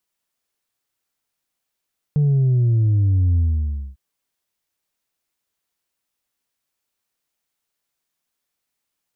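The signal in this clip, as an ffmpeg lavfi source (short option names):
-f lavfi -i "aevalsrc='0.2*clip((1.8-t)/0.59,0,1)*tanh(1.26*sin(2*PI*150*1.8/log(65/150)*(exp(log(65/150)*t/1.8)-1)))/tanh(1.26)':d=1.8:s=44100"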